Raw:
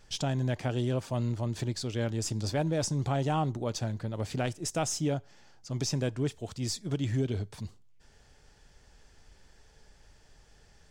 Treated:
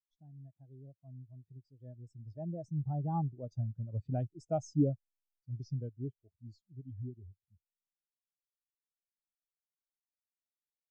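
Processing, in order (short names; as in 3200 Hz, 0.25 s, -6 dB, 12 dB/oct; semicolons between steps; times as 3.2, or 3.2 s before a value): Doppler pass-by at 4.28, 25 m/s, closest 30 m; spectral expander 2.5:1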